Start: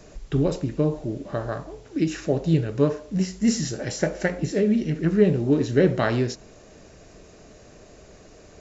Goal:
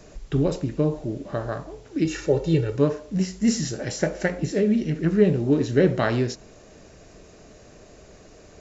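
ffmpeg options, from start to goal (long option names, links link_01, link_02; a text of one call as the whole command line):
ffmpeg -i in.wav -filter_complex "[0:a]asettb=1/sr,asplit=3[link_01][link_02][link_03];[link_01]atrim=end=2.054[link_04];[link_02]atrim=start=2.05:end=2.76,asetpts=PTS-STARTPTS,afade=type=in:duration=0.004:curve=qsin,afade=type=out:start_time=0.706:duration=0.004:curve=qsin,aecho=1:1:2.2:0.75,atrim=end_sample=31311[link_05];[link_03]atrim=start=2.756[link_06];[link_04][link_05]acrossfade=duration=0.004:curve1=hsin:curve2=qsin[link_07];[link_07][link_06]acrossfade=duration=0.004:curve1=qsin:curve2=hsin" out.wav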